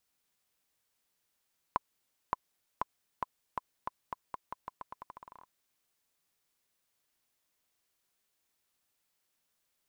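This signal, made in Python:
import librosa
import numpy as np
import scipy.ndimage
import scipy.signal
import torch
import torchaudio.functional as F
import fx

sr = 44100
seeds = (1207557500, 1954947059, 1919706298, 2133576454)

y = fx.bouncing_ball(sr, first_gap_s=0.57, ratio=0.85, hz=1010.0, decay_ms=22.0, level_db=-14.5)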